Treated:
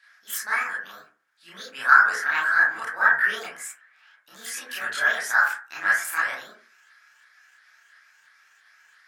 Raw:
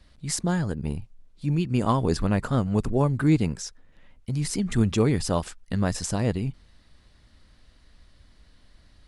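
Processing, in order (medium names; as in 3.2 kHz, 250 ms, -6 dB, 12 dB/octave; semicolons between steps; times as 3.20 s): sawtooth pitch modulation +9 st, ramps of 343 ms; resonant high-pass 1.6 kHz, resonance Q 6.6; reverberation RT60 0.40 s, pre-delay 22 ms, DRR -8.5 dB; trim -4 dB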